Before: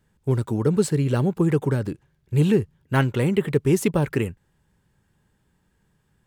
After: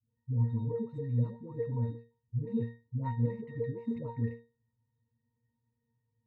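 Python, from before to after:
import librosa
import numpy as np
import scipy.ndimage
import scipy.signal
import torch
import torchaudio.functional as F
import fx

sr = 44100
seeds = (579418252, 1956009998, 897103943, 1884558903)

y = scipy.ndimage.median_filter(x, 9, mode='constant')
y = fx.octave_resonator(y, sr, note='A#', decay_s=0.31)
y = fx.dispersion(y, sr, late='highs', ms=112.0, hz=530.0)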